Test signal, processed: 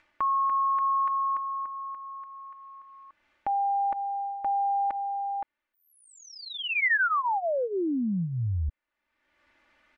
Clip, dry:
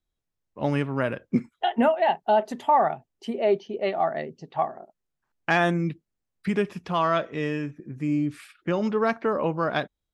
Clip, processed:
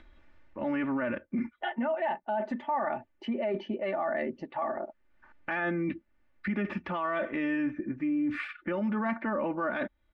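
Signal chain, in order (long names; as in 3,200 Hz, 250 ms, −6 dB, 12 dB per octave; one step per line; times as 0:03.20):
comb filter 3.4 ms, depth 81%
dynamic equaliser 210 Hz, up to +6 dB, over −39 dBFS, Q 2.5
reversed playback
downward compressor 4 to 1, threshold −31 dBFS
reversed playback
brickwall limiter −30 dBFS
in parallel at −0.5 dB: upward compression, threshold −37 dBFS
on the sum: low-pass with resonance 2,000 Hz, resonance Q 1.9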